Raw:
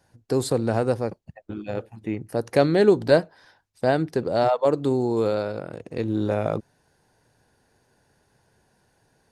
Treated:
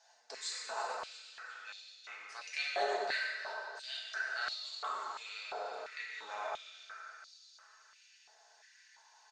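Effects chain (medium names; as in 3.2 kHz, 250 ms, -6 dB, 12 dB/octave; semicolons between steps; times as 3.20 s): companding laws mixed up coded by mu; steep low-pass 6.8 kHz 48 dB/octave; differentiator; comb 4.6 ms, depth 54%; feedback delay 346 ms, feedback 33%, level -13 dB; plate-style reverb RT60 2.3 s, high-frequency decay 0.5×, DRR -5.5 dB; dynamic bell 4.3 kHz, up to -6 dB, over -50 dBFS, Q 0.79; step-sequenced high-pass 2.9 Hz 720–4100 Hz; trim -2.5 dB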